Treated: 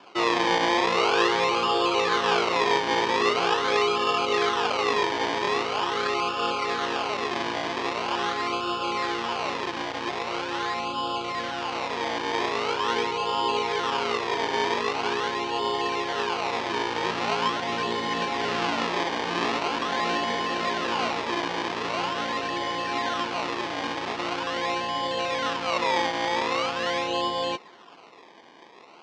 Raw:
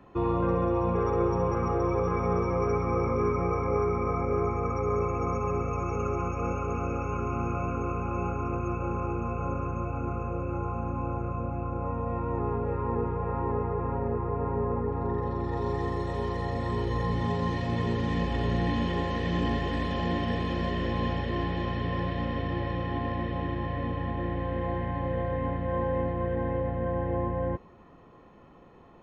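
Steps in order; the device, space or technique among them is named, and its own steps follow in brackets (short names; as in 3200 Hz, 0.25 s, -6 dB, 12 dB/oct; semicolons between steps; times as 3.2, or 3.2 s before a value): circuit-bent sampling toy (decimation with a swept rate 22×, swing 100% 0.43 Hz; speaker cabinet 470–5300 Hz, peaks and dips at 550 Hz -5 dB, 940 Hz +3 dB, 2900 Hz +3 dB); gain +8 dB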